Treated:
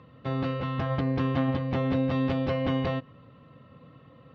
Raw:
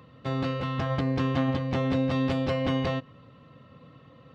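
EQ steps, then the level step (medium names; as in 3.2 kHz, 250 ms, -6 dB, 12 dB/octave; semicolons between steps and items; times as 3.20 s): distance through air 160 m; 0.0 dB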